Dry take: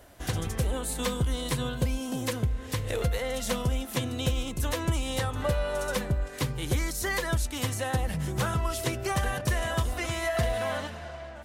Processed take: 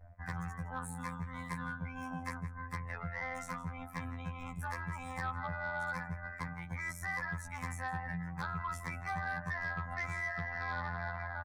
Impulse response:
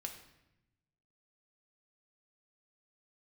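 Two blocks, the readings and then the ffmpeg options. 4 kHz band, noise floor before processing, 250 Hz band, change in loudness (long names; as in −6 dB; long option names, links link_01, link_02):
−21.5 dB, −41 dBFS, −11.0 dB, −9.5 dB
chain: -filter_complex "[0:a]areverse,acompressor=threshold=-35dB:ratio=5,areverse,afftdn=noise_reduction=24:noise_floor=-48,firequalizer=gain_entry='entry(170,0);entry(350,-27);entry(870,6);entry(2000,5);entry(3300,-9);entry(5800,3)':delay=0.05:min_phase=1,acrossover=split=740|4900[link_01][link_02][link_03];[link_02]tremolo=f=64:d=0.519[link_04];[link_03]aeval=exprs='sgn(val(0))*max(abs(val(0))-0.00158,0)':channel_layout=same[link_05];[link_01][link_04][link_05]amix=inputs=3:normalize=0,asplit=2[link_06][link_07];[link_07]adelay=163.3,volume=-16dB,highshelf=frequency=4000:gain=-3.67[link_08];[link_06][link_08]amix=inputs=2:normalize=0,afftfilt=real='hypot(re,im)*cos(PI*b)':imag='0':win_size=2048:overlap=0.75,acrossover=split=150|740[link_09][link_10][link_11];[link_09]acompressor=threshold=-54dB:ratio=4[link_12];[link_10]acompressor=threshold=-49dB:ratio=4[link_13];[link_11]acompressor=threshold=-45dB:ratio=4[link_14];[link_12][link_13][link_14]amix=inputs=3:normalize=0,highshelf=frequency=2800:width_type=q:width=1.5:gain=-7.5,aeval=exprs='0.0299*sin(PI/2*1.58*val(0)/0.0299)':channel_layout=same,bandreject=frequency=2900:width=6.4,volume=1dB"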